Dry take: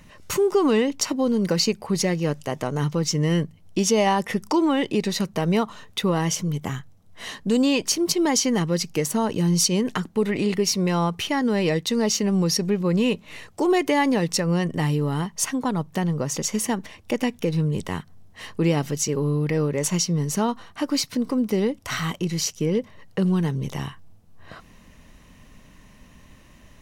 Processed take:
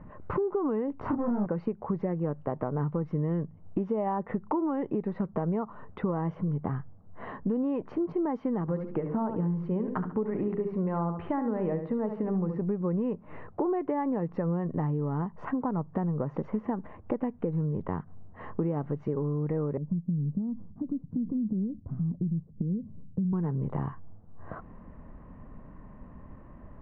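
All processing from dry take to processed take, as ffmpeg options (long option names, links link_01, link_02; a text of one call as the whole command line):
ffmpeg -i in.wav -filter_complex "[0:a]asettb=1/sr,asplit=3[link_01][link_02][link_03];[link_01]atrim=end=1.014[link_04];[link_02]atrim=start=1.01:end=1.46,asetpts=PTS-STARTPTS,afade=type=in:duration=0.004:curve=qsin,afade=type=out:start_time=0.446:duration=0.004:curve=qsin,equalizer=frequency=99:width=0.62:gain=14.5,asoftclip=type=hard:threshold=-20.5dB,asplit=2[link_05][link_06];[link_06]adelay=29,volume=-2dB[link_07];[link_05][link_07]amix=inputs=2:normalize=0,atrim=end_sample=19845[link_08];[link_03]atrim=start=1.456[link_09];[link_04][link_08]acrossfade=duration=0.004:curve1=hsin:curve2=qsin[link_10];[link_10][link_09]acrossfade=duration=0.004:curve1=qsin:curve2=hsin,asettb=1/sr,asplit=3[link_11][link_12][link_13];[link_11]atrim=end=8.614[link_14];[link_12]atrim=start=8.61:end=12.61,asetpts=PTS-STARTPTS,afade=type=in:duration=0.004:curve=qsin,afade=type=out:start_time=3.996:duration=0.004:curve=qsin,bandreject=frequency=50:width_type=h:width=6,bandreject=frequency=100:width_type=h:width=6,bandreject=frequency=150:width_type=h:width=6,bandreject=frequency=200:width_type=h:width=6,bandreject=frequency=250:width_type=h:width=6,bandreject=frequency=300:width_type=h:width=6,bandreject=frequency=350:width_type=h:width=6,bandreject=frequency=400:width_type=h:width=6,bandreject=frequency=450:width_type=h:width=6,bandreject=frequency=500:width_type=h:width=6,acrossover=split=3000[link_15][link_16];[link_16]acompressor=threshold=-32dB:ratio=4:attack=1:release=60[link_17];[link_15][link_17]amix=inputs=2:normalize=0,aecho=1:1:71|142|213:0.355|0.0923|0.024,atrim=end_sample=176400[link_18];[link_13]atrim=start=12.606[link_19];[link_14][link_18]acrossfade=duration=0.004:curve1=hsin:curve2=qsin[link_20];[link_20][link_19]acrossfade=duration=0.004:curve1=qsin:curve2=hsin,asettb=1/sr,asplit=3[link_21][link_22][link_23];[link_21]atrim=end=19.774[link_24];[link_22]atrim=start=19.77:end=23.33,asetpts=PTS-STARTPTS,afade=type=in:duration=0.004:curve=qsin,afade=type=out:start_time=3.556:duration=0.004:curve=qsin,acompressor=threshold=-26dB:ratio=6:attack=3.2:release=140:knee=1:detection=peak,lowpass=frequency=200:width_type=q:width=2[link_25];[link_23]atrim=start=23.326[link_26];[link_24][link_25]acrossfade=duration=0.004:curve1=hsin:curve2=qsin[link_27];[link_27][link_26]acrossfade=duration=0.004:curve1=qsin:curve2=hsin,lowpass=frequency=1300:width=0.5412,lowpass=frequency=1300:width=1.3066,acompressor=threshold=-30dB:ratio=6,volume=3dB" out.wav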